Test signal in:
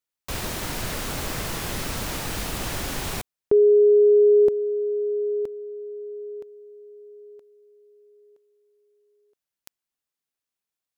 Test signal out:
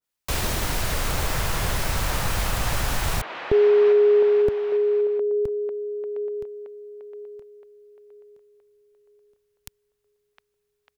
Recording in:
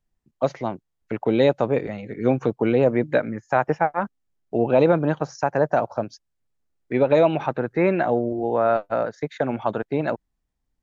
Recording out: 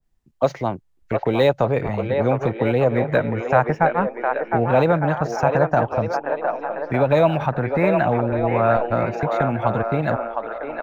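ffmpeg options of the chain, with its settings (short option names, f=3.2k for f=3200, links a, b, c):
-filter_complex "[0:a]asubboost=boost=9:cutoff=130,acrossover=split=380|3200[a][b][c];[a]acompressor=threshold=-29dB:ratio=6:release=64[d];[b]aecho=1:1:710|1207|1555|1798|1969:0.631|0.398|0.251|0.158|0.1[e];[c]acrusher=bits=3:mode=log:mix=0:aa=0.000001[f];[d][e][f]amix=inputs=3:normalize=0,adynamicequalizer=threshold=0.0126:dfrequency=1700:dqfactor=0.7:tfrequency=1700:tqfactor=0.7:attack=5:release=100:ratio=0.375:range=1.5:mode=cutabove:tftype=highshelf,volume=4.5dB"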